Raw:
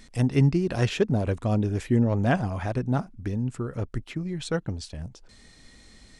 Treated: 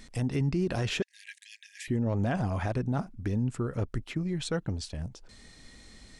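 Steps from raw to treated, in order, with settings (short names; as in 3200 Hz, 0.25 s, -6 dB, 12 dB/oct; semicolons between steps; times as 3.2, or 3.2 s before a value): 1.02–1.88 brick-wall FIR high-pass 1600 Hz; limiter -20.5 dBFS, peak gain reduction 10 dB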